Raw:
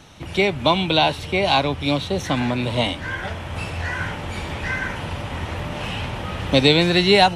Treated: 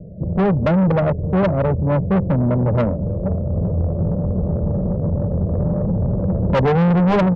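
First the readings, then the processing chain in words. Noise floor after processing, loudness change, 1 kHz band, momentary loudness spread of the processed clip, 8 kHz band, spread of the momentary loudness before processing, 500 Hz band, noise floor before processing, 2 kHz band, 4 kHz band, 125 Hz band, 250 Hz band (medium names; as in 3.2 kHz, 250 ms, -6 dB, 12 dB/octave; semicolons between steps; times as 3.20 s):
-24 dBFS, +2.5 dB, -3.5 dB, 6 LU, under -20 dB, 14 LU, +1.5 dB, -33 dBFS, -10.0 dB, under -20 dB, +9.0 dB, +5.5 dB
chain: steep low-pass 630 Hz 72 dB/octave; peaking EQ 190 Hz +13 dB 0.66 oct; comb 1.8 ms, depth 65%; sine folder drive 4 dB, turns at -5 dBFS; valve stage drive 13 dB, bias 0.3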